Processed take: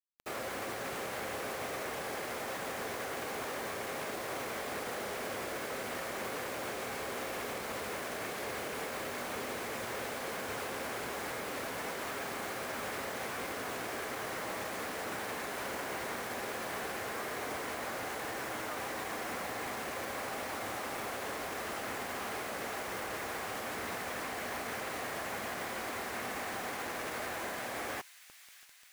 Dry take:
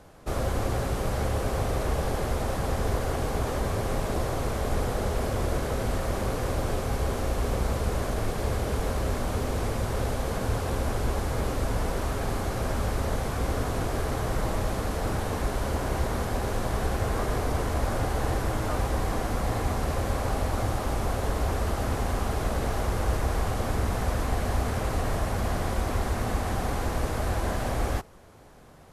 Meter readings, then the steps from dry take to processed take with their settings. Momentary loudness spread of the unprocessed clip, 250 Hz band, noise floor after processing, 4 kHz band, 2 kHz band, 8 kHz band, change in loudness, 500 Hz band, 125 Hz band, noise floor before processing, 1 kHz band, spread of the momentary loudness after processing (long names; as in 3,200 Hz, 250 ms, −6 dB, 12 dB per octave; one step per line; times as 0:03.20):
1 LU, −12.0 dB, −40 dBFS, −3.0 dB, −1.0 dB, −4.0 dB, −8.5 dB, −8.5 dB, −24.5 dB, −32 dBFS, −6.5 dB, 0 LU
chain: high-pass filter 260 Hz 12 dB per octave
parametric band 2,100 Hz +9.5 dB 1.3 octaves
brickwall limiter −27 dBFS, peak gain reduction 9.5 dB
bit reduction 7 bits
on a send: delay with a high-pass on its return 636 ms, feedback 71%, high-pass 3,100 Hz, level −12 dB
on the sum: level −3.5 dB